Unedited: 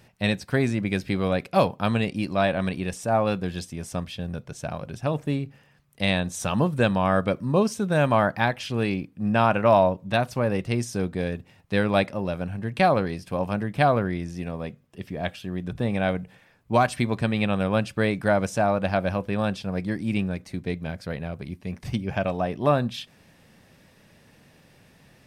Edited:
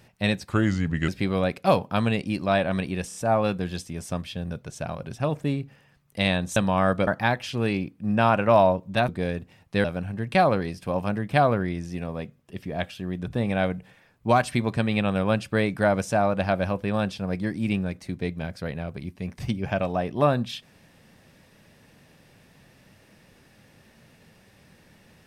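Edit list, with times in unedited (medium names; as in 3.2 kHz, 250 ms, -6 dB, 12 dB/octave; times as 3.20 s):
0.49–0.97 s: speed 81%
2.97 s: stutter 0.03 s, 3 plays
6.39–6.84 s: delete
7.35–8.24 s: delete
10.25–11.06 s: delete
11.82–12.29 s: delete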